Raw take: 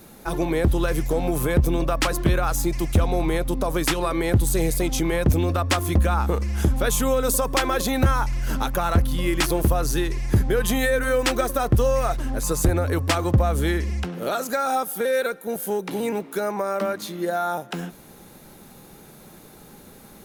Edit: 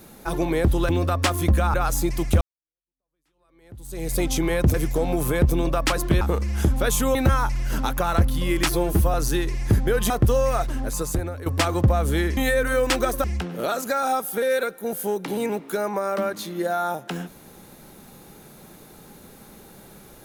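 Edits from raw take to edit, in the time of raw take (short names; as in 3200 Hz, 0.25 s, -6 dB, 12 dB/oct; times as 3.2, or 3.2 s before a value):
0.89–2.36 swap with 5.36–6.21
3.03–4.78 fade in exponential
7.15–7.92 cut
9.49–9.77 stretch 1.5×
10.73–11.6 move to 13.87
12.23–12.96 fade out, to -14 dB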